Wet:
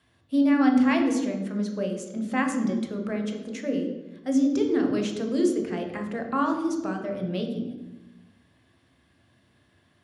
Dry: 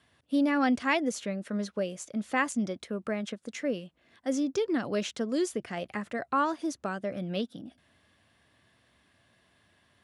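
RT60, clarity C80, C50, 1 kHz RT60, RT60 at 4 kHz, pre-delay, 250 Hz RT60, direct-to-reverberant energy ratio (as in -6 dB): 1.1 s, 8.0 dB, 6.0 dB, 0.95 s, 0.75 s, 10 ms, 1.4 s, 2.5 dB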